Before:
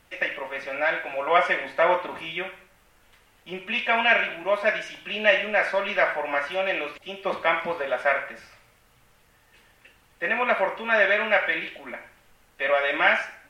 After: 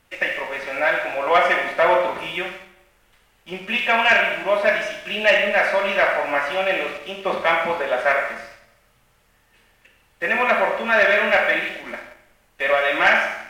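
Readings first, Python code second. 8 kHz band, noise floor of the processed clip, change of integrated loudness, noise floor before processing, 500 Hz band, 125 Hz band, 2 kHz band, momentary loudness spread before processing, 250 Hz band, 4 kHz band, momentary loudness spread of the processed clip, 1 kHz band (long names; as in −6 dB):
can't be measured, −60 dBFS, +4.5 dB, −60 dBFS, +4.5 dB, +5.0 dB, +4.5 dB, 13 LU, +4.5 dB, +5.0 dB, 12 LU, +4.5 dB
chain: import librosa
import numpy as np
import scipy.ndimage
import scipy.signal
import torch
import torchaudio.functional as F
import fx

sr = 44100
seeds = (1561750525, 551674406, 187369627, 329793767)

y = fx.rev_schroeder(x, sr, rt60_s=0.89, comb_ms=28, drr_db=4.5)
y = fx.leveller(y, sr, passes=1)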